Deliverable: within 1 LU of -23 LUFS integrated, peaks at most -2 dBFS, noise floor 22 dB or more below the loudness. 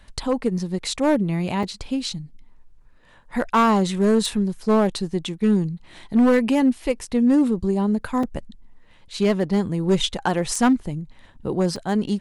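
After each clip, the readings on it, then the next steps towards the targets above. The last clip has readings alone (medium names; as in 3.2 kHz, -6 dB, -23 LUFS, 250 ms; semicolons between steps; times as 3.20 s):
clipped samples 1.5%; clipping level -12.0 dBFS; dropouts 3; longest dropout 3.7 ms; loudness -22.0 LUFS; peak level -12.0 dBFS; loudness target -23.0 LUFS
-> clip repair -12 dBFS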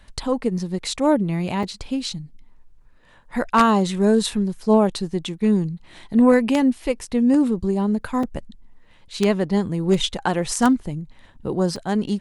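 clipped samples 0.0%; dropouts 3; longest dropout 3.7 ms
-> interpolate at 1.63/8.23/11.76 s, 3.7 ms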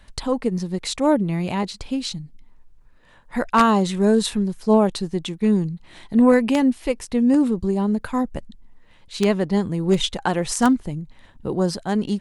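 dropouts 0; loudness -21.0 LUFS; peak level -3.0 dBFS; loudness target -23.0 LUFS
-> trim -2 dB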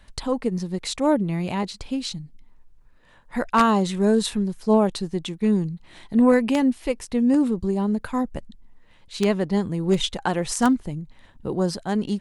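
loudness -23.0 LUFS; peak level -5.0 dBFS; noise floor -53 dBFS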